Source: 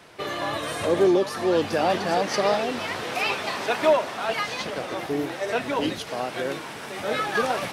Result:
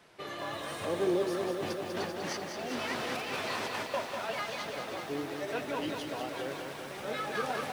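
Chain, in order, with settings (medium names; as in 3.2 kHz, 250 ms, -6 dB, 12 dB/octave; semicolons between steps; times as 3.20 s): 1.51–3.94 s: compressor with a negative ratio -28 dBFS, ratio -0.5; flange 0.71 Hz, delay 4.6 ms, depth 3.6 ms, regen -72%; bit-crushed delay 196 ms, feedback 80%, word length 8-bit, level -5.5 dB; trim -6 dB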